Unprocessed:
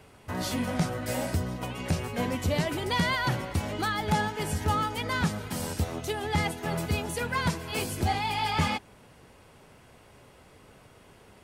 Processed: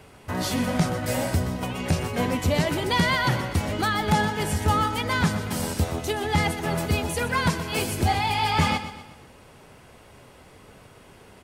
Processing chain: feedback delay 124 ms, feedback 45%, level -12 dB; trim +4.5 dB

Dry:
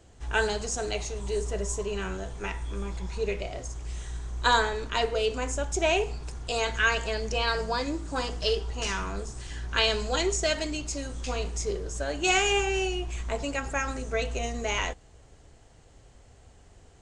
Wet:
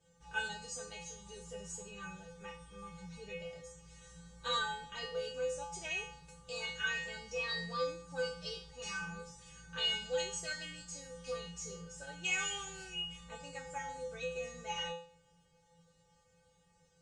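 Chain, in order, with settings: feedback comb 170 Hz, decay 0.45 s, harmonics odd, mix 100%; trim +6 dB

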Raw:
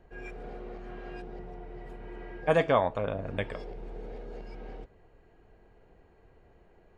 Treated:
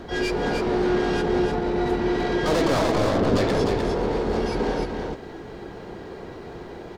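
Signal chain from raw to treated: harmony voices +3 st -8 dB, +12 st -10 dB; dynamic bell 390 Hz, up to +6 dB, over -40 dBFS, Q 1.1; in parallel at -2 dB: compressor with a negative ratio -36 dBFS, ratio -1; on the sum: overdrive pedal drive 32 dB, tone 1.9 kHz, clips at -7 dBFS; high-order bell 1.2 kHz -10.5 dB 3 oct; delay 302 ms -4.5 dB

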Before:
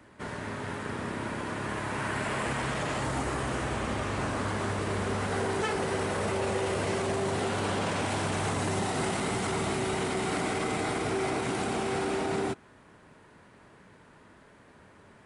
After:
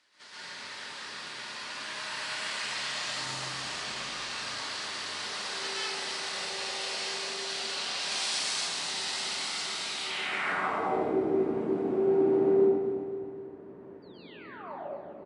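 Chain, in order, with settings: 8.00–8.51 s: treble shelf 5.9 kHz +8.5 dB; 14.02–14.76 s: painted sound fall 530–4800 Hz -40 dBFS; feedback delay 256 ms, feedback 48%, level -10.5 dB; band-pass sweep 4.6 kHz -> 360 Hz, 9.88–11.03 s; 3.04–4.10 s: bass shelf 160 Hz +11.5 dB; reverberation RT60 0.95 s, pre-delay 116 ms, DRR -8 dB; gain riding within 4 dB 2 s

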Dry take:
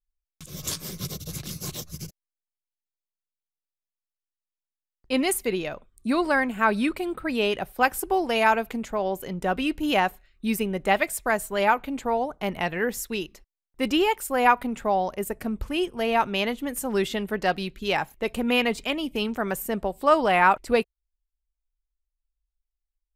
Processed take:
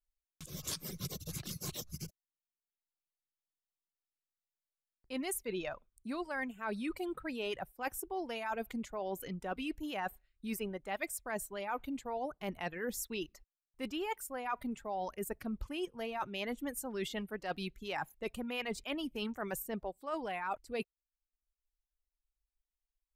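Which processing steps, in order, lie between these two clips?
reverb removal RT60 0.81 s; reverse; compression 12:1, threshold -29 dBFS, peak gain reduction 16.5 dB; reverse; trim -5.5 dB

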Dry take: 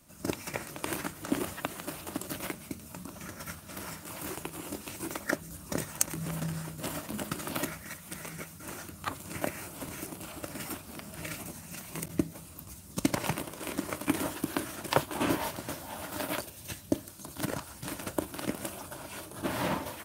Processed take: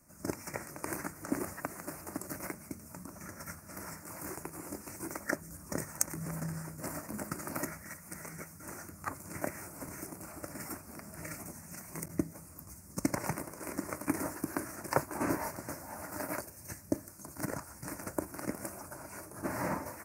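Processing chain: Chebyshev band-stop 2–5.5 kHz, order 2; trim -2.5 dB

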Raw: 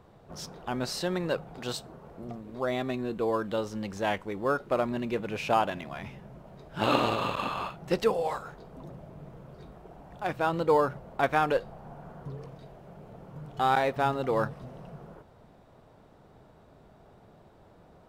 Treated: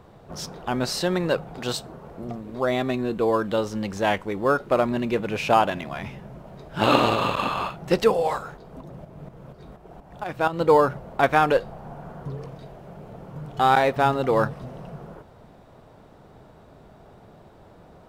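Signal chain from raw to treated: 8.45–10.59 s: tremolo saw up 4.2 Hz, depth 45% -> 75%; trim +6.5 dB

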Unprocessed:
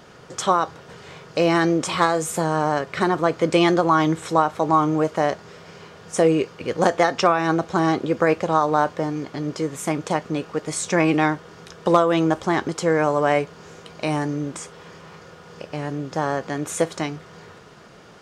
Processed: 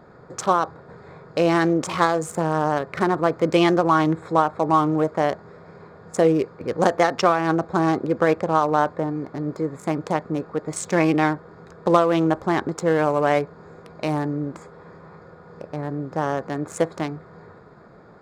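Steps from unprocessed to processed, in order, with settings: local Wiener filter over 15 samples

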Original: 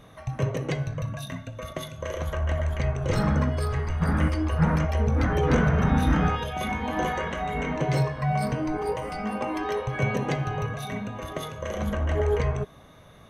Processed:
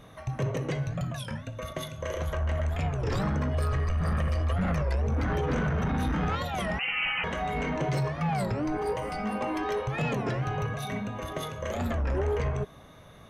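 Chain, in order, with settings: 3.54–5.06 s: comb 1.7 ms, depth 83%; peak limiter -16.5 dBFS, peak gain reduction 8.5 dB; saturation -22 dBFS, distortion -15 dB; 6.79–7.24 s: frequency inversion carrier 3 kHz; warped record 33 1/3 rpm, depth 250 cents

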